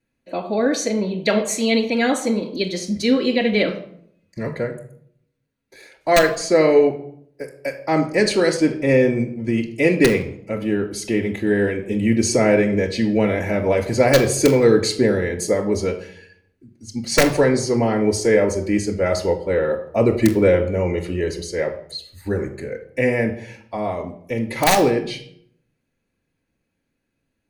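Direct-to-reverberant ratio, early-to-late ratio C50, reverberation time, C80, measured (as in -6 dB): -8.0 dB, 10.5 dB, 0.65 s, 13.5 dB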